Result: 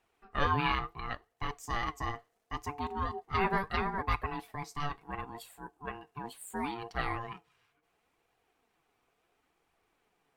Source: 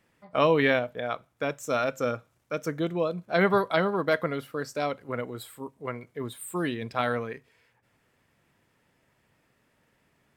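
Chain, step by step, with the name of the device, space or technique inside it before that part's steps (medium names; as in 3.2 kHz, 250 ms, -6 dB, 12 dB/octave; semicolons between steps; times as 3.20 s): alien voice (ring modulator 580 Hz; flange 0.72 Hz, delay 1 ms, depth 7.4 ms, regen +51%)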